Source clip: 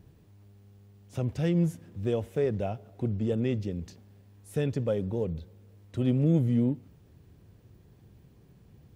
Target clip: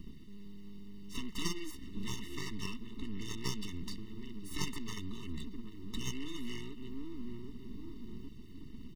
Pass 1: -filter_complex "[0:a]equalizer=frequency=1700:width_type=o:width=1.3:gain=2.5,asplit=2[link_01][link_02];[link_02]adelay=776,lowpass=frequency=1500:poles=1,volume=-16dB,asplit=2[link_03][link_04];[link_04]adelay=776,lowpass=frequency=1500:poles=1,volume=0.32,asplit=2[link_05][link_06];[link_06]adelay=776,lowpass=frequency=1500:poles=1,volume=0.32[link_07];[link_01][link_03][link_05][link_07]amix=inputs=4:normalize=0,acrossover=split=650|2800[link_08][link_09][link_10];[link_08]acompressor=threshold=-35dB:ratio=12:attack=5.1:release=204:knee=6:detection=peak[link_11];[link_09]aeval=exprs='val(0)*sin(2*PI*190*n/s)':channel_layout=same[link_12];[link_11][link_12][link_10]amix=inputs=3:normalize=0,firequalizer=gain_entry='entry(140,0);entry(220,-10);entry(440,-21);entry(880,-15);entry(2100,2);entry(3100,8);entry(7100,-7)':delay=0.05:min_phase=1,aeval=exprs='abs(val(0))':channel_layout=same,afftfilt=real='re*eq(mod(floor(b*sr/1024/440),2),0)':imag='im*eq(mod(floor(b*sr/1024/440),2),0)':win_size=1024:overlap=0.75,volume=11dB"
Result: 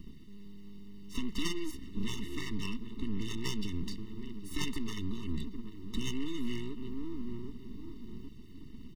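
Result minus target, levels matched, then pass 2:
downward compressor: peak gain reduction −6 dB
-filter_complex "[0:a]equalizer=frequency=1700:width_type=o:width=1.3:gain=2.5,asplit=2[link_01][link_02];[link_02]adelay=776,lowpass=frequency=1500:poles=1,volume=-16dB,asplit=2[link_03][link_04];[link_04]adelay=776,lowpass=frequency=1500:poles=1,volume=0.32,asplit=2[link_05][link_06];[link_06]adelay=776,lowpass=frequency=1500:poles=1,volume=0.32[link_07];[link_01][link_03][link_05][link_07]amix=inputs=4:normalize=0,acrossover=split=650|2800[link_08][link_09][link_10];[link_08]acompressor=threshold=-41.5dB:ratio=12:attack=5.1:release=204:knee=6:detection=peak[link_11];[link_09]aeval=exprs='val(0)*sin(2*PI*190*n/s)':channel_layout=same[link_12];[link_11][link_12][link_10]amix=inputs=3:normalize=0,firequalizer=gain_entry='entry(140,0);entry(220,-10);entry(440,-21);entry(880,-15);entry(2100,2);entry(3100,8);entry(7100,-7)':delay=0.05:min_phase=1,aeval=exprs='abs(val(0))':channel_layout=same,afftfilt=real='re*eq(mod(floor(b*sr/1024/440),2),0)':imag='im*eq(mod(floor(b*sr/1024/440),2),0)':win_size=1024:overlap=0.75,volume=11dB"

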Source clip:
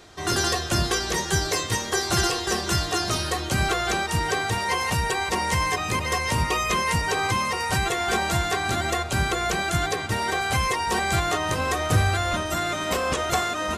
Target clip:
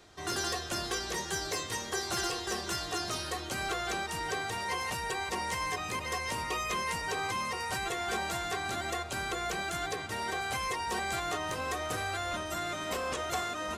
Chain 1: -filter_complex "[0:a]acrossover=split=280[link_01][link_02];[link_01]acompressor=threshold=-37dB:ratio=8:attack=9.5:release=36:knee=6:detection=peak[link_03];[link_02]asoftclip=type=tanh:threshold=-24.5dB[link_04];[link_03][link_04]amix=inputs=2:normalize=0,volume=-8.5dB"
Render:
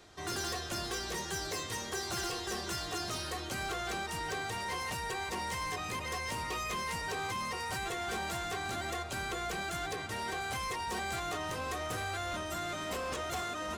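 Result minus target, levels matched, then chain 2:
soft clipping: distortion +13 dB
-filter_complex "[0:a]acrossover=split=280[link_01][link_02];[link_01]acompressor=threshold=-37dB:ratio=8:attack=9.5:release=36:knee=6:detection=peak[link_03];[link_02]asoftclip=type=tanh:threshold=-14dB[link_04];[link_03][link_04]amix=inputs=2:normalize=0,volume=-8.5dB"

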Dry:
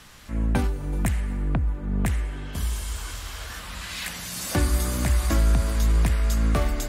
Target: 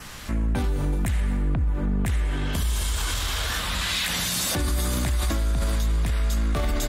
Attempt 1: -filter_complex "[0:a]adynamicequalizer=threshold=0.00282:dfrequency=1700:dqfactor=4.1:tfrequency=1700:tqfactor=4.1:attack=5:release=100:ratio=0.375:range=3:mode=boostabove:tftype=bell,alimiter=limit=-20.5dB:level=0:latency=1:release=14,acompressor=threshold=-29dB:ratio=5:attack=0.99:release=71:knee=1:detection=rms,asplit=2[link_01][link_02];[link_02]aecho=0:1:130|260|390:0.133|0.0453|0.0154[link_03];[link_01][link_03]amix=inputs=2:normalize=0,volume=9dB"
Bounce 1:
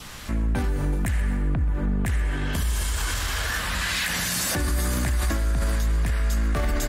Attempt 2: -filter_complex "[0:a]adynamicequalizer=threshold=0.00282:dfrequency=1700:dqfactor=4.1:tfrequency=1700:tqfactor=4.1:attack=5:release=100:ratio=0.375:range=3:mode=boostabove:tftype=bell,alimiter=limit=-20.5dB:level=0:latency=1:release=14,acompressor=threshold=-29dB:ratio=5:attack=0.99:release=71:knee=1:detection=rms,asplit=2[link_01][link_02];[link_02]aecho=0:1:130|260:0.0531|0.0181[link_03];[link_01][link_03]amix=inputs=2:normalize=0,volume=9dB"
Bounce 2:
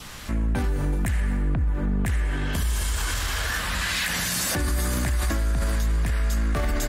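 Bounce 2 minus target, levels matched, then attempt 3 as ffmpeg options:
2,000 Hz band +3.0 dB
-filter_complex "[0:a]adynamicequalizer=threshold=0.00282:dfrequency=3600:dqfactor=4.1:tfrequency=3600:tqfactor=4.1:attack=5:release=100:ratio=0.375:range=3:mode=boostabove:tftype=bell,alimiter=limit=-20.5dB:level=0:latency=1:release=14,acompressor=threshold=-29dB:ratio=5:attack=0.99:release=71:knee=1:detection=rms,asplit=2[link_01][link_02];[link_02]aecho=0:1:130|260:0.0531|0.0181[link_03];[link_01][link_03]amix=inputs=2:normalize=0,volume=9dB"

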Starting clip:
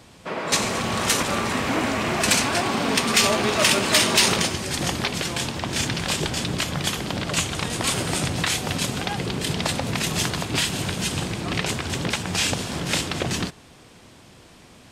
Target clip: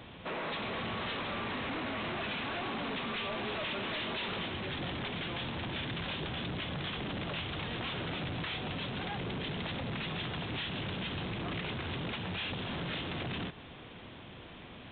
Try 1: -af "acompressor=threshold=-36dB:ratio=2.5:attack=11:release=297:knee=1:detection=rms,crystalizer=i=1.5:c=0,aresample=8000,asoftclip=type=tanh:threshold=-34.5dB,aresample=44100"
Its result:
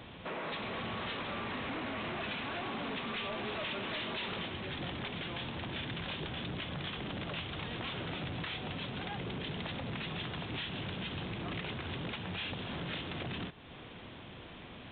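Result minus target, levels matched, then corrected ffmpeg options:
downward compressor: peak gain reduction +5 dB
-af "acompressor=threshold=-27.5dB:ratio=2.5:attack=11:release=297:knee=1:detection=rms,crystalizer=i=1.5:c=0,aresample=8000,asoftclip=type=tanh:threshold=-34.5dB,aresample=44100"

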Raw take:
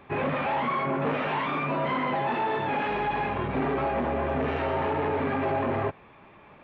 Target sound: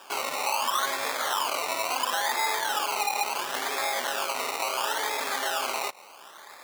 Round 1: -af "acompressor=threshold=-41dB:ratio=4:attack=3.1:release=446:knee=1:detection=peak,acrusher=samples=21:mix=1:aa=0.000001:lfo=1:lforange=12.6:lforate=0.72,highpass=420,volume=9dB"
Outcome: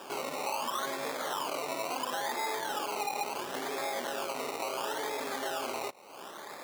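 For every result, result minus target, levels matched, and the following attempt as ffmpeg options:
downward compressor: peak gain reduction +9 dB; 500 Hz band +5.5 dB
-af "acompressor=threshold=-29dB:ratio=4:attack=3.1:release=446:knee=1:detection=peak,acrusher=samples=21:mix=1:aa=0.000001:lfo=1:lforange=12.6:lforate=0.72,highpass=420,volume=9dB"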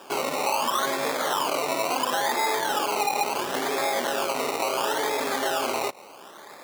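500 Hz band +5.5 dB
-af "acompressor=threshold=-29dB:ratio=4:attack=3.1:release=446:knee=1:detection=peak,acrusher=samples=21:mix=1:aa=0.000001:lfo=1:lforange=12.6:lforate=0.72,highpass=870,volume=9dB"

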